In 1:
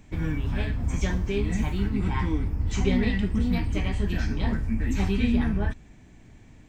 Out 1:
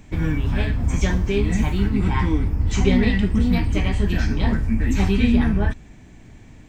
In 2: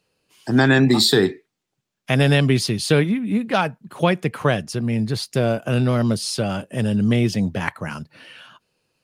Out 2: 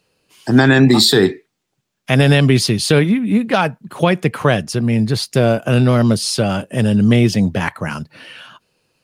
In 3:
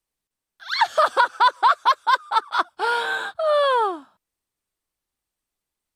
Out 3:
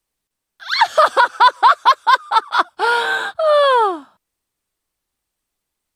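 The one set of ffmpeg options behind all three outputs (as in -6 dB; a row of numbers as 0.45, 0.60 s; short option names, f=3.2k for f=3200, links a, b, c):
-af "alimiter=level_in=7dB:limit=-1dB:release=50:level=0:latency=1,volume=-1dB"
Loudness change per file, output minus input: +6.0, +5.0, +6.0 LU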